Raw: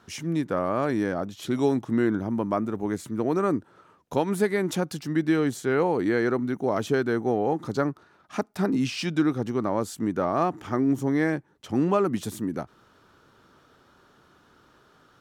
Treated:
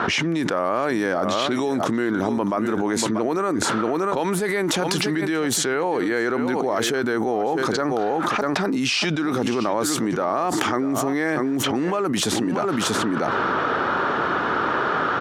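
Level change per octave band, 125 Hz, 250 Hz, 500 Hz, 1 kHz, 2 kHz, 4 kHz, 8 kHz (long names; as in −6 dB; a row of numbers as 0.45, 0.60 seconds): +0.5, +2.5, +3.5, +8.5, +10.0, +14.0, +14.0 decibels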